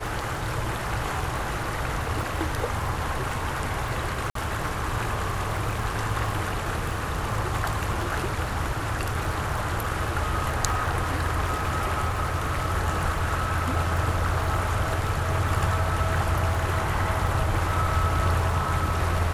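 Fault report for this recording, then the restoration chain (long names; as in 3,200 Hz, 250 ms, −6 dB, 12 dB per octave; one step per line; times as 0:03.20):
surface crackle 30 per second −31 dBFS
0:04.30–0:04.35: drop-out 53 ms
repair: click removal
repair the gap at 0:04.30, 53 ms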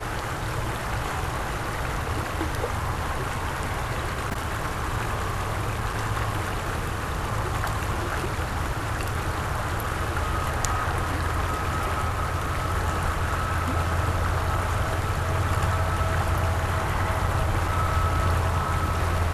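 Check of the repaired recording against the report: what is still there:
none of them is left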